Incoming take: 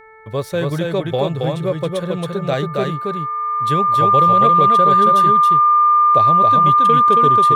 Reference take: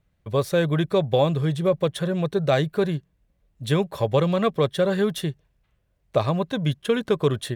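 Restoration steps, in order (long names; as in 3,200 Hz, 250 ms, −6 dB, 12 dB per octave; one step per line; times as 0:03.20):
hum removal 439.7 Hz, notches 5
notch filter 1,200 Hz, Q 30
echo removal 274 ms −3 dB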